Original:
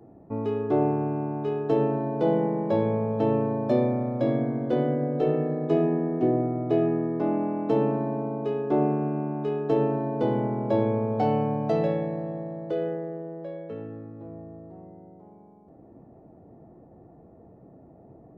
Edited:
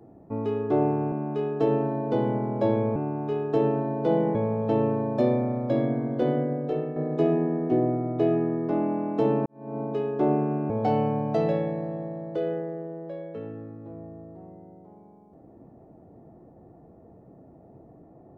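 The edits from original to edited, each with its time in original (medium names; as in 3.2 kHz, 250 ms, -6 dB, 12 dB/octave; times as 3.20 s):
2.51–2.86 s: delete
4.87–5.47 s: fade out, to -8 dB
7.97–8.30 s: fade in quadratic
9.21–11.05 s: move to 1.12 s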